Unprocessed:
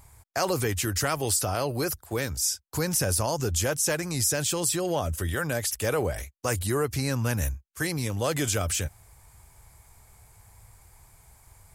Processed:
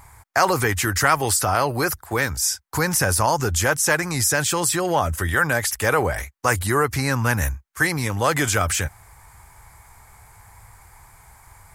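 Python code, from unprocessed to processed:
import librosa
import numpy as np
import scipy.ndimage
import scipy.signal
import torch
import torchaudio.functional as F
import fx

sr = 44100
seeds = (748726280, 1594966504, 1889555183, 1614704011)

y = fx.band_shelf(x, sr, hz=1300.0, db=8.0, octaves=1.7)
y = F.gain(torch.from_numpy(y), 4.5).numpy()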